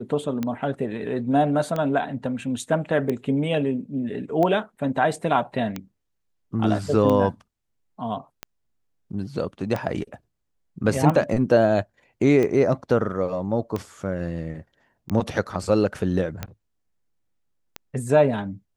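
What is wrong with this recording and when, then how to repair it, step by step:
tick 45 rpm -14 dBFS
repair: de-click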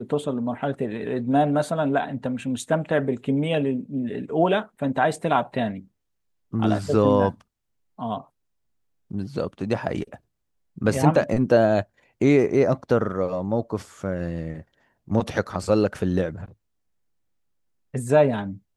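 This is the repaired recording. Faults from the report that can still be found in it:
nothing left

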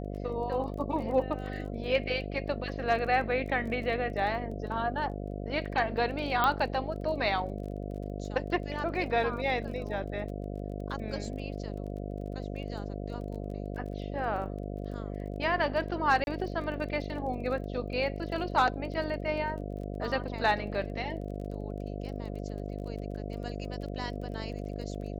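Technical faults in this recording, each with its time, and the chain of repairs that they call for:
buzz 50 Hz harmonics 14 -37 dBFS
crackle 23 per s -41 dBFS
6.44 s: pop -13 dBFS
16.24–16.27 s: dropout 31 ms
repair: de-click; de-hum 50 Hz, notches 14; interpolate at 16.24 s, 31 ms

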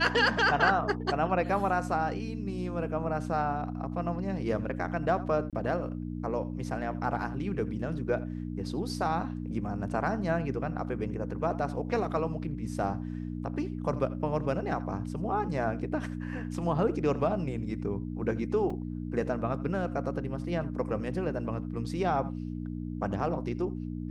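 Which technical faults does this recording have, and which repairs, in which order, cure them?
hum 60 Hz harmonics 5 -36 dBFS
5.50–5.53 s: dropout 27 ms
18.70 s: dropout 3.6 ms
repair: de-hum 60 Hz, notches 5; interpolate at 5.50 s, 27 ms; interpolate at 18.70 s, 3.6 ms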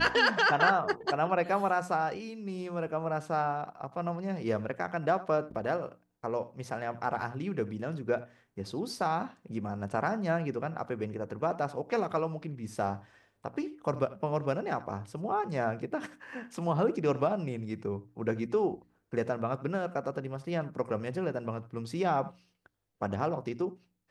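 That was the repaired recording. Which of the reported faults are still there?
nothing left

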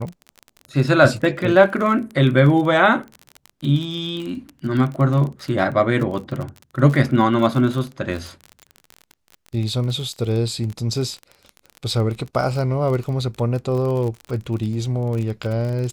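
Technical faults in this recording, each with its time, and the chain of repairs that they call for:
crackle 30 per s -26 dBFS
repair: de-click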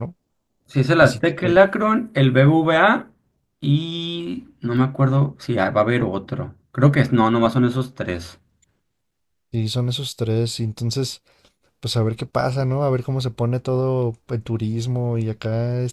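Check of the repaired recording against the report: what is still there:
nothing left

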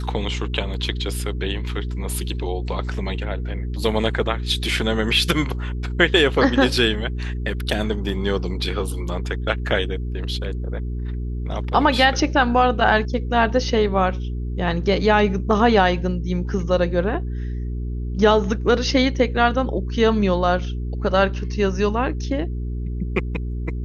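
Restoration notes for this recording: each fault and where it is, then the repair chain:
hum 60 Hz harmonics 7 -26 dBFS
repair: de-hum 60 Hz, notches 7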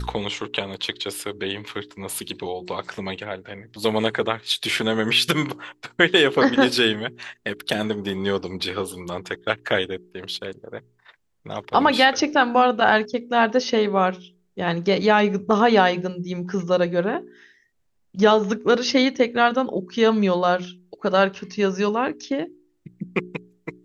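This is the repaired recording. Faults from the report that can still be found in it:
nothing left

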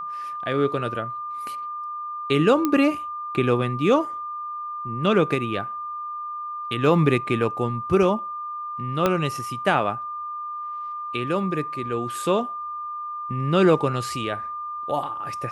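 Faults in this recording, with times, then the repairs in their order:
whine 1.2 kHz -29 dBFS
2.65 s: pop -9 dBFS
9.06 s: pop -7 dBFS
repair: de-click; band-stop 1.2 kHz, Q 30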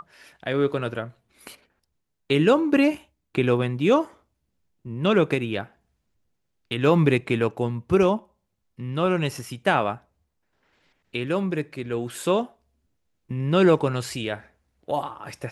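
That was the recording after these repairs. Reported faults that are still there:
9.06 s: pop

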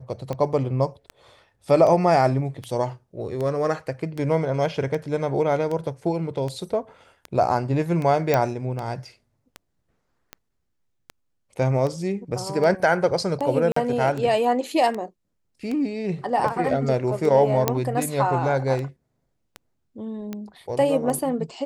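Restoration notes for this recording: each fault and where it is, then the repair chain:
tick 78 rpm -18 dBFS
8.34 s: pop -7 dBFS
13.72–13.76 s: dropout 44 ms
17.68 s: pop -4 dBFS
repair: de-click; interpolate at 13.72 s, 44 ms

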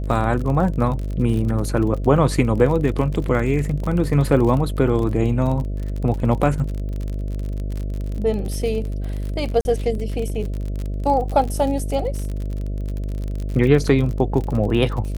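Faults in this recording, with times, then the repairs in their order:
buzz 50 Hz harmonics 13 -25 dBFS
crackle 40 per s -26 dBFS
9.61–9.65 s: dropout 41 ms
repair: de-click; de-hum 50 Hz, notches 13; interpolate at 9.61 s, 41 ms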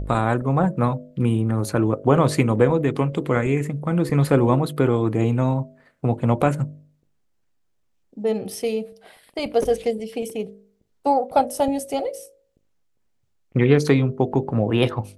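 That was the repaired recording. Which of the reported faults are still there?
nothing left

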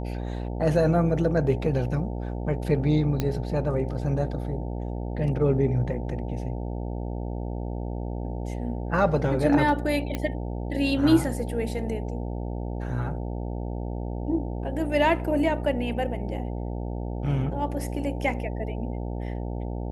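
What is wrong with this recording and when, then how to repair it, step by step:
buzz 60 Hz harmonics 15 -31 dBFS
3.20 s: pop -12 dBFS
10.15 s: pop -15 dBFS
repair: de-click; de-hum 60 Hz, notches 15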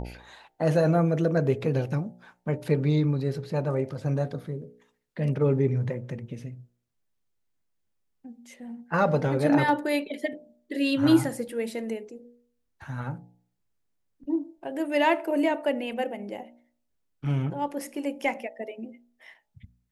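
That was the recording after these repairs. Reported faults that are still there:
10.15 s: pop

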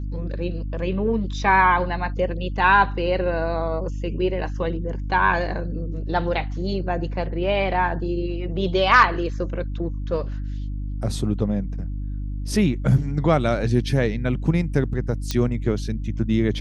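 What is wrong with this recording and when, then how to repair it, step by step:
hum 50 Hz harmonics 6 -28 dBFS
15.31 s: pop -10 dBFS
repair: de-click; de-hum 50 Hz, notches 6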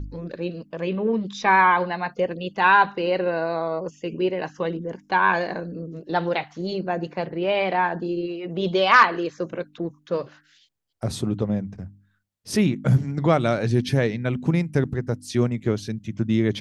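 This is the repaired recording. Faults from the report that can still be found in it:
nothing left

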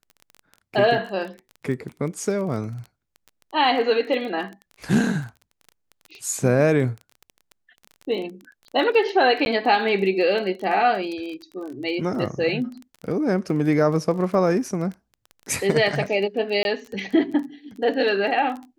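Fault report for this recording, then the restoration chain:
crackle 21 per s -31 dBFS
9.45–9.46 s: dropout 11 ms
16.63–16.65 s: dropout 21 ms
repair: de-click; interpolate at 9.45 s, 11 ms; interpolate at 16.63 s, 21 ms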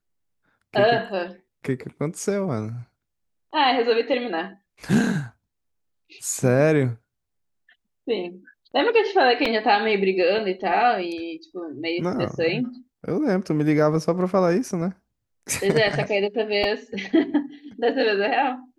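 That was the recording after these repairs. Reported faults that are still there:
nothing left

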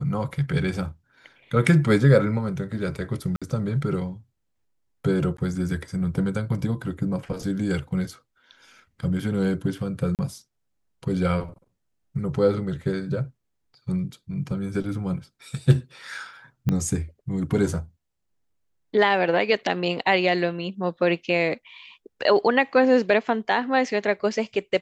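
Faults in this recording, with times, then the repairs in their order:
3.36–3.42 s: dropout 56 ms
5.37–5.38 s: dropout 13 ms
10.15–10.19 s: dropout 38 ms
16.69 s: pop -13 dBFS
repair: de-click; interpolate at 3.36 s, 56 ms; interpolate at 5.37 s, 13 ms; interpolate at 10.15 s, 38 ms

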